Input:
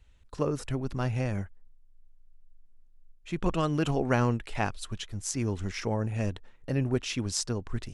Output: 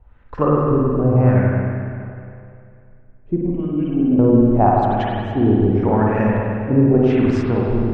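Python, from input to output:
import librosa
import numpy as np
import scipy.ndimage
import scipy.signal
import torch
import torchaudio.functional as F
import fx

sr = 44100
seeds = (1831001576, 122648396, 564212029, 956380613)

y = fx.formant_cascade(x, sr, vowel='i', at=(3.39, 4.19))
y = fx.filter_lfo_lowpass(y, sr, shape='sine', hz=0.86, low_hz=340.0, high_hz=1800.0, q=2.4)
y = fx.rev_spring(y, sr, rt60_s=2.5, pass_ms=(47, 51), chirp_ms=50, drr_db=-4.0)
y = y * 10.0 ** (8.5 / 20.0)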